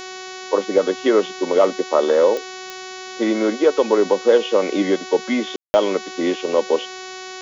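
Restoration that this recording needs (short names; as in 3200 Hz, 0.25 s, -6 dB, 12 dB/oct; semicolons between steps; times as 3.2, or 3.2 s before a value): de-click; de-hum 373.1 Hz, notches 19; room tone fill 5.56–5.74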